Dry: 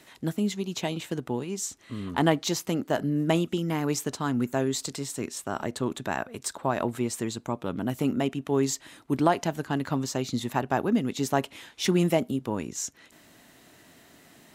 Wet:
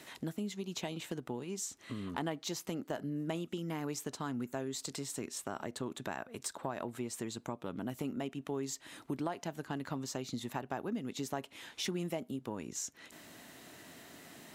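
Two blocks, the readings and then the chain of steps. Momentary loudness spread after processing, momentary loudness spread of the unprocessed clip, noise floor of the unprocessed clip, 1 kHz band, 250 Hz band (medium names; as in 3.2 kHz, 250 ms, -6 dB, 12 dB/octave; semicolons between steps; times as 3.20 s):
6 LU, 9 LU, -56 dBFS, -12.0 dB, -11.5 dB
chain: bass shelf 71 Hz -8.5 dB; compression 3:1, threshold -41 dBFS, peak gain reduction 18 dB; trim +1.5 dB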